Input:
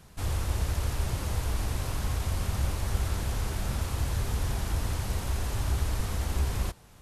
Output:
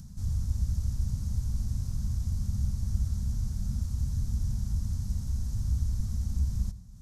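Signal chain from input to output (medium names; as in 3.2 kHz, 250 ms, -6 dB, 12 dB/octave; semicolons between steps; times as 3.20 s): reverberation RT60 0.80 s, pre-delay 69 ms, DRR 15 dB; upward compressor, threshold -34 dBFS; FFT filter 230 Hz 0 dB, 340 Hz -24 dB, 1.4 kHz -22 dB, 2.7 kHz -27 dB, 5.9 kHz -5 dB, 9.3 kHz -13 dB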